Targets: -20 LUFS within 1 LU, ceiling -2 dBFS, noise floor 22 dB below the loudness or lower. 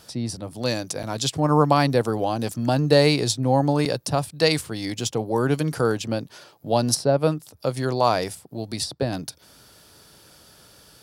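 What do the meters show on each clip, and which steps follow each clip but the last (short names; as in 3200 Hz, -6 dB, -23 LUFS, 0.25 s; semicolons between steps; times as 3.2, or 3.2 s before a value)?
dropouts 2; longest dropout 5.9 ms; loudness -23.0 LUFS; peak -3.5 dBFS; loudness target -20.0 LUFS
-> interpolate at 1.03/3.85, 5.9 ms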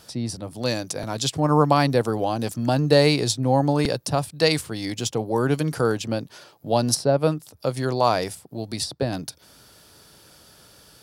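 dropouts 0; loudness -23.0 LUFS; peak -3.5 dBFS; loudness target -20.0 LUFS
-> gain +3 dB; limiter -2 dBFS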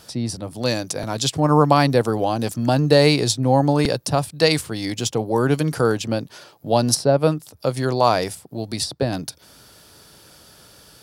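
loudness -20.0 LUFS; peak -2.0 dBFS; noise floor -50 dBFS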